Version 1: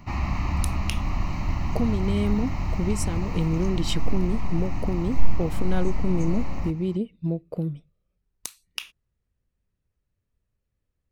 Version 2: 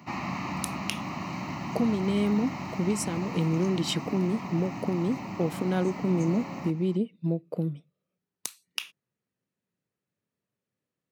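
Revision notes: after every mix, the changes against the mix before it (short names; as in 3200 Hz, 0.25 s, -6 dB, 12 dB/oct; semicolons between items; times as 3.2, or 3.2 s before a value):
master: add HPF 150 Hz 24 dB/oct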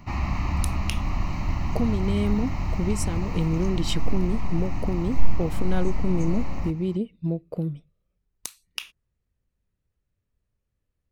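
master: remove HPF 150 Hz 24 dB/oct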